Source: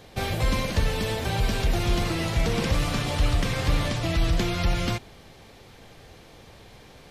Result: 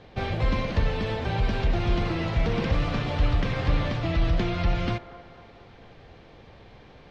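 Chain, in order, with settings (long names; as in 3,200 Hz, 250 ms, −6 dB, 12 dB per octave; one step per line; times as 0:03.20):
high-frequency loss of the air 220 metres
on a send: delay with a band-pass on its return 236 ms, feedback 53%, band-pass 830 Hz, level −13 dB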